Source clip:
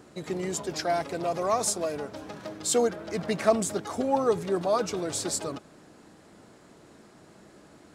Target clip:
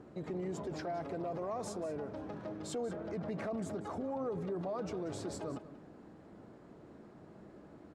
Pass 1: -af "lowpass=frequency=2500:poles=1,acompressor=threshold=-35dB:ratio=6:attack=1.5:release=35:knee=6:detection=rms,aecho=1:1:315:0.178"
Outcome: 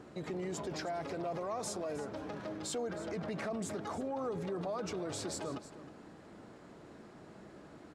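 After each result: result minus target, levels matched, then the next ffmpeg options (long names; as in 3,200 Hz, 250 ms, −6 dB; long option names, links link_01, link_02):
echo 129 ms late; 2,000 Hz band +4.0 dB
-af "lowpass=frequency=2500:poles=1,acompressor=threshold=-35dB:ratio=6:attack=1.5:release=35:knee=6:detection=rms,aecho=1:1:186:0.178"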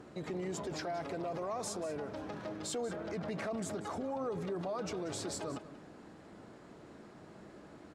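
2,000 Hz band +4.0 dB
-af "lowpass=frequency=720:poles=1,acompressor=threshold=-35dB:ratio=6:attack=1.5:release=35:knee=6:detection=rms,aecho=1:1:186:0.178"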